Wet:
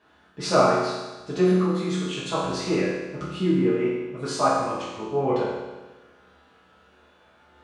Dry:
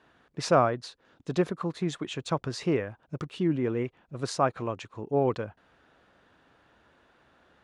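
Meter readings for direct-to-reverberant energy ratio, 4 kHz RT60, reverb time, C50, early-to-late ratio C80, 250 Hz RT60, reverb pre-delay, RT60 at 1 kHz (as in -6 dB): -9.0 dB, 1.2 s, 1.2 s, -0.5 dB, 2.0 dB, 1.2 s, 5 ms, 1.2 s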